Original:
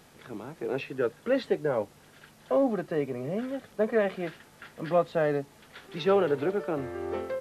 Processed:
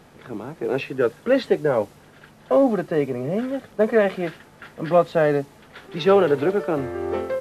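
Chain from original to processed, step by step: mismatched tape noise reduction decoder only; gain +7.5 dB

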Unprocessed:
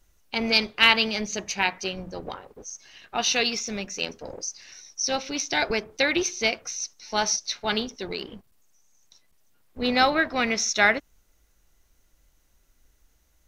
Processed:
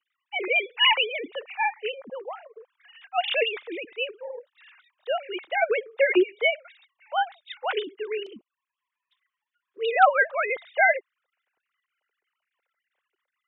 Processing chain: sine-wave speech; 2.33–3.21 HPF 410 Hz; 8.26–9.8 envelope flanger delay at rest 7.9 ms, full sweep at -44 dBFS

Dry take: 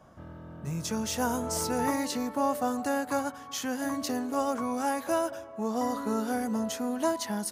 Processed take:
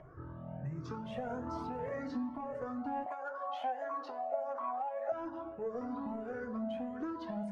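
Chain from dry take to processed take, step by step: moving spectral ripple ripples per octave 0.51, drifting -1.6 Hz, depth 13 dB; limiter -19.5 dBFS, peak gain reduction 6 dB; reverb RT60 1.0 s, pre-delay 3 ms, DRR 6.5 dB; upward compressor, threshold -48 dBFS; LPF 1400 Hz 12 dB/oct; soft clip -18.5 dBFS, distortion -24 dB; 3.06–5.12 resonant high-pass 670 Hz, resonance Q 4.9; compressor 6:1, threshold -33 dBFS, peak gain reduction 14 dB; cascading flanger rising 1.3 Hz; gain +2 dB

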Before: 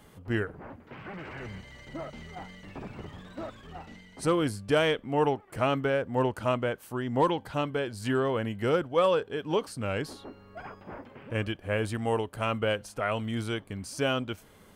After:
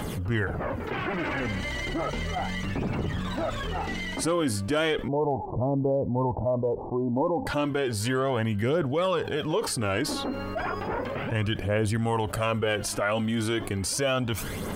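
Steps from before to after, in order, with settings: 5.08–7.47 steep low-pass 1000 Hz 96 dB/oct; phaser 0.34 Hz, delay 3.9 ms, feedback 46%; fast leveller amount 70%; gain -4 dB

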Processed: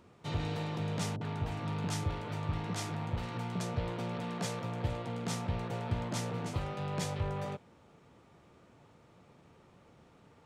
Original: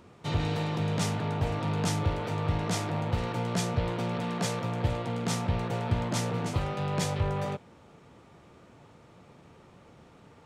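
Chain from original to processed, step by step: 1.16–3.61 bands offset in time lows, highs 50 ms, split 560 Hz; gain -6 dB

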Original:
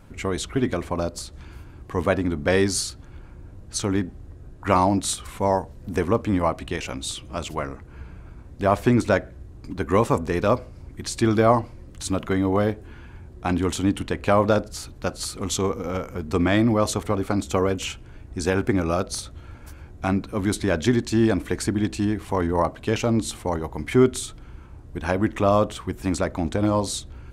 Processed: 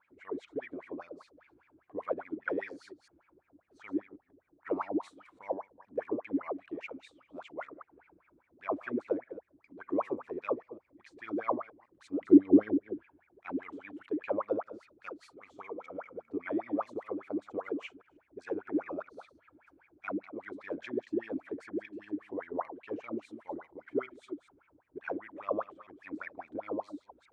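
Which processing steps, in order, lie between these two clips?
reverse delay 0.154 s, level -11 dB; wah 5 Hz 280–2400 Hz, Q 15; 12.21–13.03 resonant low shelf 480 Hz +13 dB, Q 1.5

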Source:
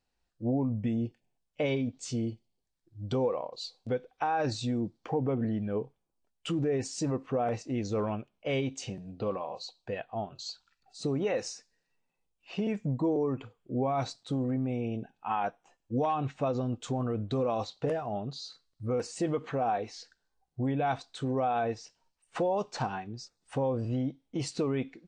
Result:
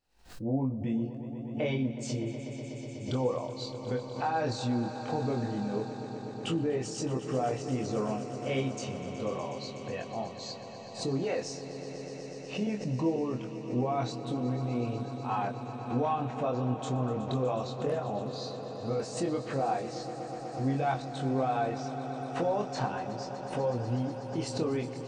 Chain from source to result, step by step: chorus 0.1 Hz, depth 2.3 ms; swelling echo 0.123 s, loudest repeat 5, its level -15 dB; backwards sustainer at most 120 dB/s; gain +1.5 dB

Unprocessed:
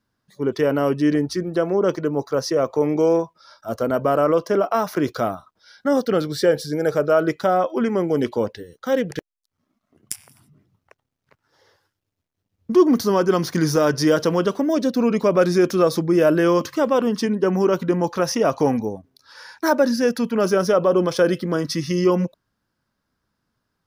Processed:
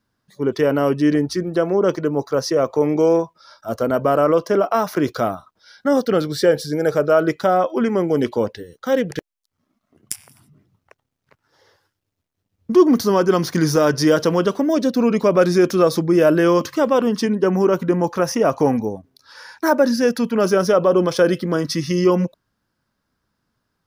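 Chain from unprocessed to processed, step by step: 17.47–19.85 dynamic EQ 4000 Hz, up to -7 dB, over -46 dBFS, Q 1.5; gain +2 dB

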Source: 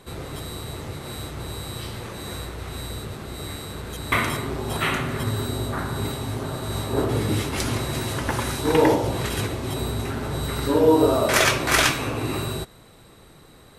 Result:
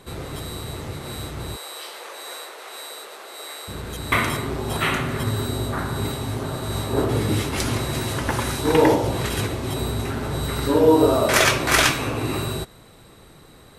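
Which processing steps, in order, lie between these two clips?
1.56–3.68 HPF 480 Hz 24 dB/oct; gain +1.5 dB

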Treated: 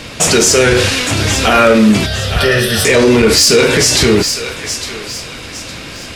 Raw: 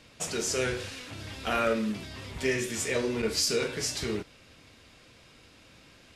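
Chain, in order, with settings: soft clip -20.5 dBFS, distortion -19 dB; 2.06–2.85 fixed phaser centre 1500 Hz, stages 8; thinning echo 0.859 s, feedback 37%, high-pass 980 Hz, level -14 dB; maximiser +27.5 dB; gain -1 dB

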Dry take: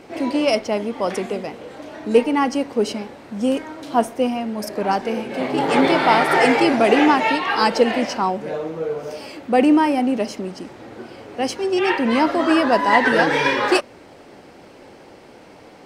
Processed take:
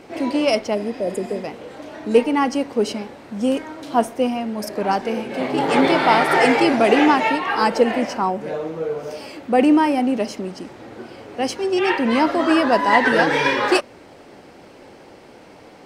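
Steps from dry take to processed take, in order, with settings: 0.77–1.37 spectral repair 720–6700 Hz after; 7.28–9.59 dynamic EQ 4000 Hz, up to -6 dB, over -39 dBFS, Q 1

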